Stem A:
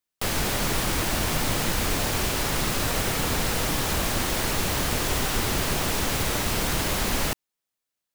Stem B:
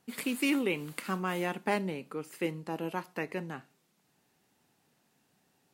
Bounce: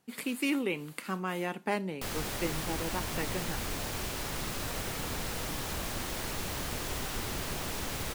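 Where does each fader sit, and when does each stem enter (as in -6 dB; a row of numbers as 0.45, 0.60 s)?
-10.5, -1.5 dB; 1.80, 0.00 s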